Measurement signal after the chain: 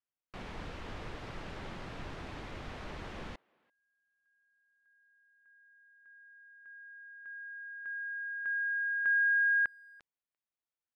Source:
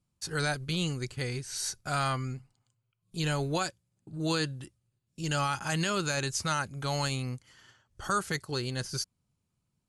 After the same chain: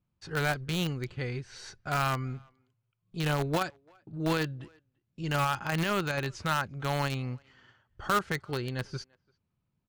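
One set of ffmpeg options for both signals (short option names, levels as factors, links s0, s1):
-filter_complex "[0:a]lowpass=2800,asplit=2[s0][s1];[s1]acrusher=bits=3:mix=0:aa=0.000001,volume=0.422[s2];[s0][s2]amix=inputs=2:normalize=0,asplit=2[s3][s4];[s4]adelay=340,highpass=300,lowpass=3400,asoftclip=type=hard:threshold=0.0562,volume=0.0398[s5];[s3][s5]amix=inputs=2:normalize=0"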